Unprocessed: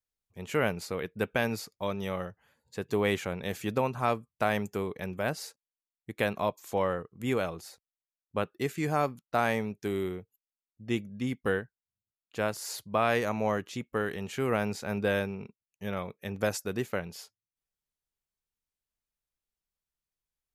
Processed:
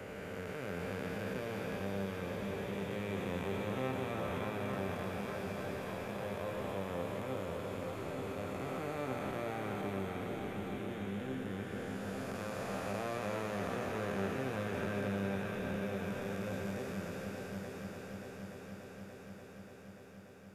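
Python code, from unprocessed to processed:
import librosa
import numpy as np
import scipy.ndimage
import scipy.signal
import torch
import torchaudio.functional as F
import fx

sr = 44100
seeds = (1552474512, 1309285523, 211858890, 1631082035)

y = fx.spec_blur(x, sr, span_ms=1230.0)
y = fx.resonator_bank(y, sr, root=36, chord='sus4', decay_s=0.23)
y = fx.echo_heads(y, sr, ms=291, heads='second and third', feedback_pct=60, wet_db=-8.0)
y = fx.band_squash(y, sr, depth_pct=40)
y = F.gain(torch.from_numpy(y), 6.0).numpy()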